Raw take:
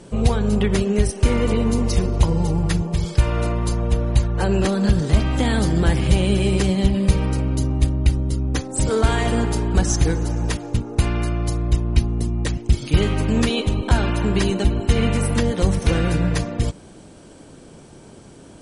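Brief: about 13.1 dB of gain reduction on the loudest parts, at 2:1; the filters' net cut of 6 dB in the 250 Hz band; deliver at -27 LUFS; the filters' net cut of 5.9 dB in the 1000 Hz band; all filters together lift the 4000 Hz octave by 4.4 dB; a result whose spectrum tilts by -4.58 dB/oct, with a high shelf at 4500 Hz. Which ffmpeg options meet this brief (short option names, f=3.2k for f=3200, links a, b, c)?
-af "equalizer=f=250:t=o:g=-8.5,equalizer=f=1k:t=o:g=-8,equalizer=f=4k:t=o:g=4,highshelf=f=4.5k:g=4.5,acompressor=threshold=-36dB:ratio=2,volume=5.5dB"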